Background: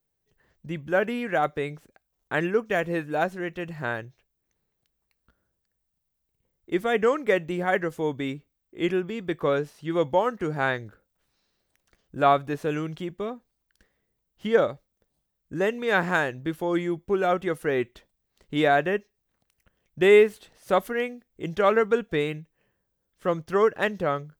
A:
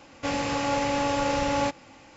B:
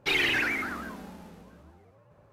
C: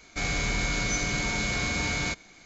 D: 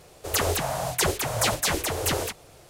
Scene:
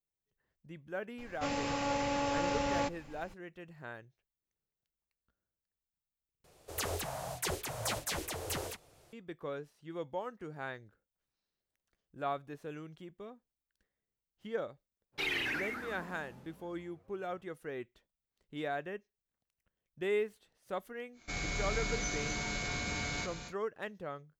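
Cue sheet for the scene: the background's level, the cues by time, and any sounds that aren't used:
background −16.5 dB
0:01.18: mix in A −7.5 dB + background noise brown −46 dBFS
0:06.44: overwrite with D −12 dB
0:15.12: mix in B −9 dB, fades 0.02 s
0:21.12: mix in C −9 dB, fades 0.10 s + loudspeakers that aren't time-aligned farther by 81 metres −9 dB, 92 metres −11 dB

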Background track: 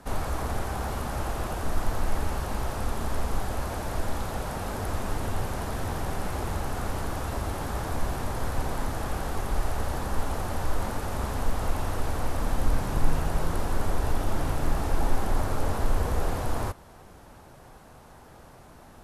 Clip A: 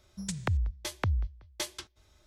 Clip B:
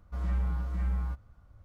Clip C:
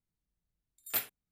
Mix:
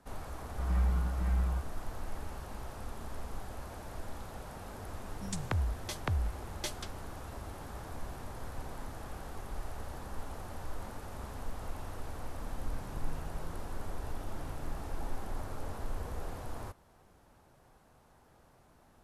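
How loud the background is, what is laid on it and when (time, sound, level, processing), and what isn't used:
background track −13 dB
0:00.46: mix in B
0:05.04: mix in A −3.5 dB
not used: C

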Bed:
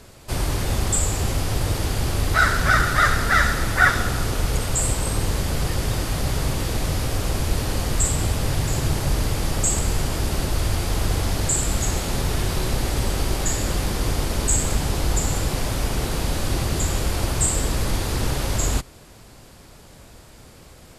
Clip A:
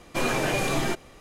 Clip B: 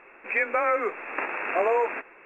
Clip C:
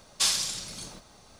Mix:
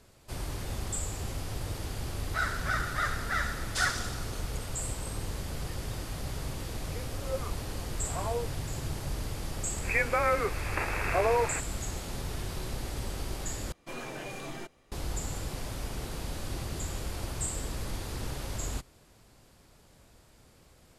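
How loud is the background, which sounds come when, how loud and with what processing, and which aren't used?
bed −13 dB
0:03.55: mix in C −10 dB
0:06.60: mix in B −5.5 dB + LFO wah 1.4 Hz 200–1,000 Hz, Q 3.2
0:09.59: mix in B −3 dB
0:13.72: overwrite with A −14.5 dB

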